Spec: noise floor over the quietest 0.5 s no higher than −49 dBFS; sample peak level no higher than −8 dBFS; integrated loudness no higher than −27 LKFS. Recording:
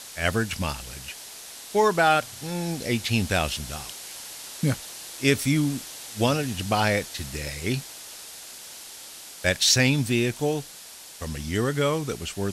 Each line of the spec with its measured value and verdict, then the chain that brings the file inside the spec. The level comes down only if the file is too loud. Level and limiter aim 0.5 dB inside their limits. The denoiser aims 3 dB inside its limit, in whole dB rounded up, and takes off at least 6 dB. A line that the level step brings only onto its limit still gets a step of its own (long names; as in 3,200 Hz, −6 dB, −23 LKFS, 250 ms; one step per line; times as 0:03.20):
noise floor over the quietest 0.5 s −44 dBFS: out of spec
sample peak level −6.5 dBFS: out of spec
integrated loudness −25.0 LKFS: out of spec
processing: broadband denoise 6 dB, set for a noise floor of −44 dBFS
level −2.5 dB